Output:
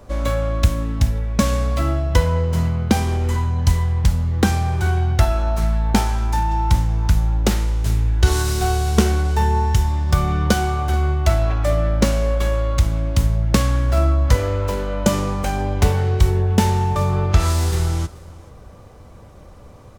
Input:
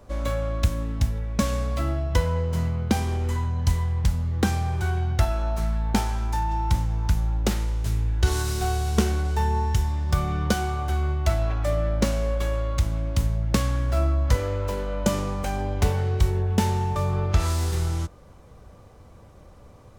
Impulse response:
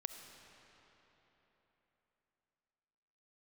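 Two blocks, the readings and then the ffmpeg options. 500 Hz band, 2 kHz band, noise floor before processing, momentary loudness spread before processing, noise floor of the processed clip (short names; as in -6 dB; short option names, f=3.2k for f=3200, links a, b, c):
+5.5 dB, +6.0 dB, -48 dBFS, 3 LU, -42 dBFS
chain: -filter_complex "[0:a]aecho=1:1:432:0.075,asplit=2[a][b];[1:a]atrim=start_sample=2205,atrim=end_sample=3528[c];[b][c]afir=irnorm=-1:irlink=0,volume=7.5dB[d];[a][d]amix=inputs=2:normalize=0,volume=-2.5dB"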